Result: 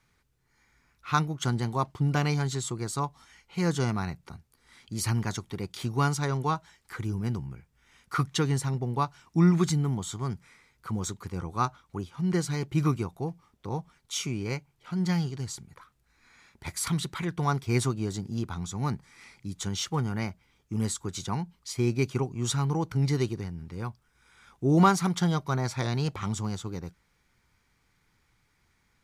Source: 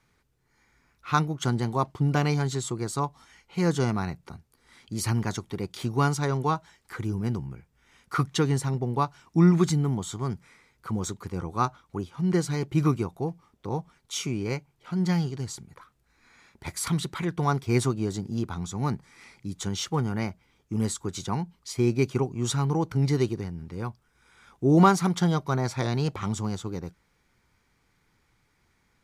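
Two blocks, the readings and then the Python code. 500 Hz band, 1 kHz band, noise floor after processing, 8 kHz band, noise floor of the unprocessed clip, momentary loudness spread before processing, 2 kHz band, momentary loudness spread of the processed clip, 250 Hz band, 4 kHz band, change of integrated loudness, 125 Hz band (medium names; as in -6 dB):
-4.0 dB, -2.0 dB, -70 dBFS, 0.0 dB, -69 dBFS, 12 LU, -1.0 dB, 12 LU, -2.5 dB, 0.0 dB, -2.0 dB, -1.5 dB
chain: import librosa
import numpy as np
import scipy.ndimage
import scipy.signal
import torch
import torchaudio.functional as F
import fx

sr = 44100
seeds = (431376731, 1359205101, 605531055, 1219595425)

y = fx.peak_eq(x, sr, hz=410.0, db=-4.0, octaves=2.5)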